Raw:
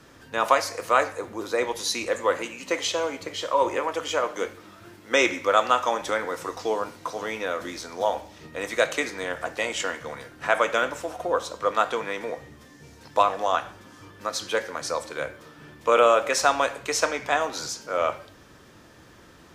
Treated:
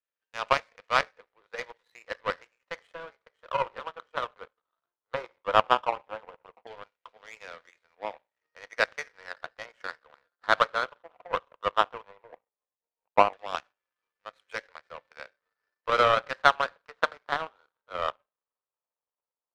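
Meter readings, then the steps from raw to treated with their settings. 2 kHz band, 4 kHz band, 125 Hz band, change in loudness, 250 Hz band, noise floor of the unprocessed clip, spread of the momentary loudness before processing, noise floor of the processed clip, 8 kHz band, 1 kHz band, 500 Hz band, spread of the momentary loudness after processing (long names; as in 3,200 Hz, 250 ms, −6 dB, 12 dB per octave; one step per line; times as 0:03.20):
−4.0 dB, −5.5 dB, −3.0 dB, −3.5 dB, −12.0 dB, −51 dBFS, 12 LU, below −85 dBFS, below −15 dB, −3.5 dB, −8.0 dB, 23 LU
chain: elliptic band-pass filter 470–4,000 Hz
auto-filter low-pass saw down 0.15 Hz 810–2,800 Hz
power curve on the samples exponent 2
level +1 dB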